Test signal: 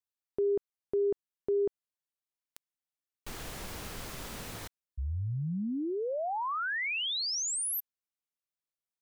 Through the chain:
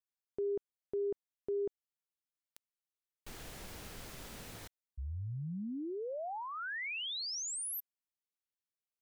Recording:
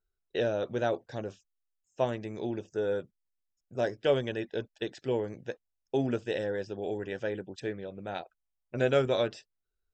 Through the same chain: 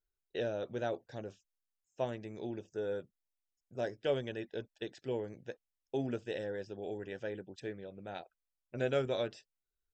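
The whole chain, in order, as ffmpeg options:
-af "equalizer=f=1100:t=o:w=0.51:g=-3,volume=0.473"

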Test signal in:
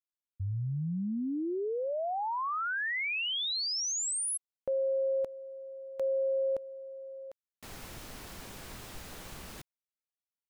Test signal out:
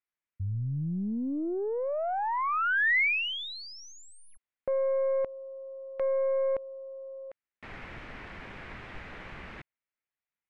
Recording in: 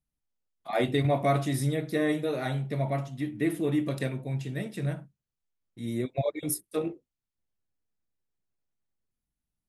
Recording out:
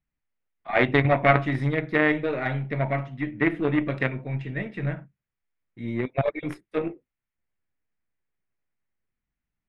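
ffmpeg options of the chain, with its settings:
-af "aeval=exprs='0.224*(cos(1*acos(clip(val(0)/0.224,-1,1)))-cos(1*PI/2))+0.0501*(cos(2*acos(clip(val(0)/0.224,-1,1)))-cos(2*PI/2))+0.0355*(cos(3*acos(clip(val(0)/0.224,-1,1)))-cos(3*PI/2))+0.00794*(cos(8*acos(clip(val(0)/0.224,-1,1)))-cos(8*PI/2))':c=same,lowpass=f=2100:t=q:w=2.3,volume=2.24"

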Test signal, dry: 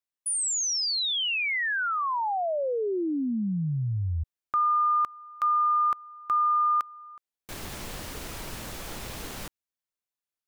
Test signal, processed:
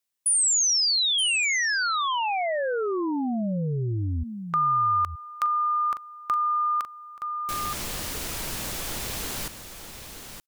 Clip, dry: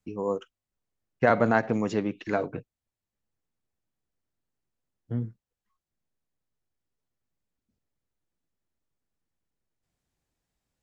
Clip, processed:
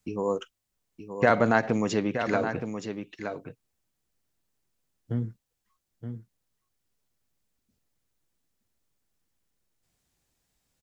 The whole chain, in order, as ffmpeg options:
-filter_complex "[0:a]highshelf=f=2900:g=7,aecho=1:1:921:0.299,asplit=2[s0][s1];[s1]acompressor=threshold=0.01:ratio=6:attack=91:release=43,volume=0.841[s2];[s0][s2]amix=inputs=2:normalize=0,volume=0.841"

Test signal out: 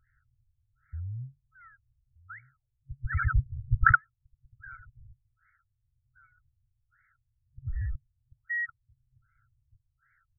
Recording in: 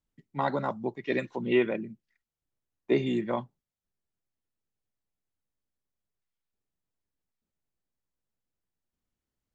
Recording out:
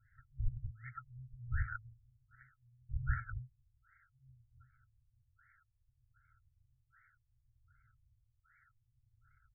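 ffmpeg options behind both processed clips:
-filter_complex "[0:a]asplit=2[s0][s1];[s1]adelay=1224,volume=0.0794,highshelf=f=4000:g=-27.6[s2];[s0][s2]amix=inputs=2:normalize=0,acrossover=split=130|960[s3][s4][s5];[s4]acompressor=threshold=0.00501:ratio=4[s6];[s3][s6][s5]amix=inputs=3:normalize=0,highshelf=f=3900:g=11,acrossover=split=2500[s7][s8];[s8]acompressor=threshold=0.0126:ratio=4:attack=1:release=60[s9];[s7][s9]amix=inputs=2:normalize=0,aexciter=amount=8.1:drive=4.4:freq=3200,acrusher=samples=27:mix=1:aa=0.000001:lfo=1:lforange=43.2:lforate=0.67,afftfilt=real='re*(1-between(b*sr/4096,130,1300))':imag='im*(1-between(b*sr/4096,130,1300))':win_size=4096:overlap=0.75,crystalizer=i=0.5:c=0,firequalizer=gain_entry='entry(210,0);entry(380,-4);entry(590,5);entry(970,9);entry(1700,2);entry(6100,-24)':delay=0.05:min_phase=1,afftfilt=real='re*lt(b*sr/1024,260*pow(2300/260,0.5+0.5*sin(2*PI*1.3*pts/sr)))':imag='im*lt(b*sr/1024,260*pow(2300/260,0.5+0.5*sin(2*PI*1.3*pts/sr)))':win_size=1024:overlap=0.75"

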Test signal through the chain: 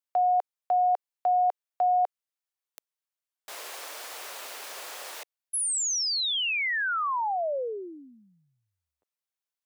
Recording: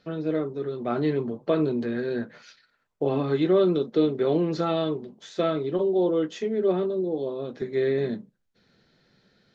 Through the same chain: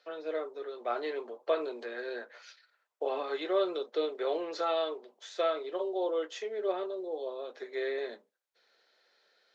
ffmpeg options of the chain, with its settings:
-af "highpass=f=490:w=0.5412,highpass=f=490:w=1.3066,volume=0.75"

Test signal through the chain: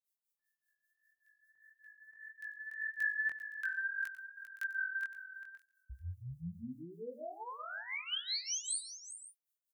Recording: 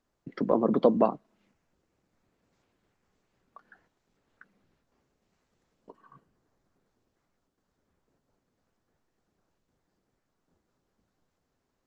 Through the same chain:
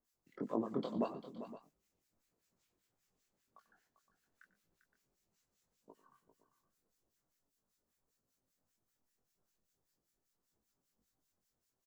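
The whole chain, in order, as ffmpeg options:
-filter_complex "[0:a]acrossover=split=4200[s0][s1];[s1]acompressor=threshold=0.00708:ratio=4:attack=1:release=60[s2];[s0][s2]amix=inputs=2:normalize=0,highshelf=f=4400:g=6,crystalizer=i=2.5:c=0,acrossover=split=1300[s3][s4];[s3]aeval=exprs='val(0)*(1-1/2+1/2*cos(2*PI*5.1*n/s))':c=same[s5];[s4]aeval=exprs='val(0)*(1-1/2-1/2*cos(2*PI*5.1*n/s))':c=same[s6];[s5][s6]amix=inputs=2:normalize=0,flanger=delay=18:depth=5.8:speed=1.7,aecho=1:1:94|113|396|516:0.126|0.112|0.251|0.15,volume=0.531"

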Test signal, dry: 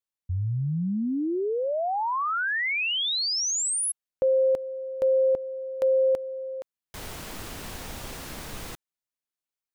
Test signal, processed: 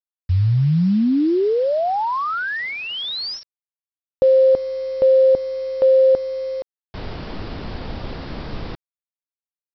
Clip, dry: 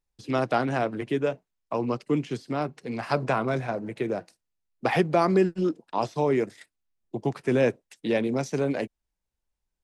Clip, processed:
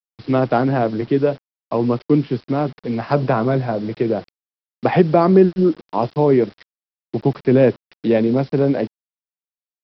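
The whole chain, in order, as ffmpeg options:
-af "tiltshelf=f=970:g=5.5,aresample=11025,acrusher=bits=7:mix=0:aa=0.000001,aresample=44100,adynamicequalizer=threshold=0.00316:dfrequency=2500:dqfactor=2.8:tfrequency=2500:tqfactor=2.8:attack=5:release=100:ratio=0.375:range=2:mode=cutabove:tftype=bell,volume=1.88"

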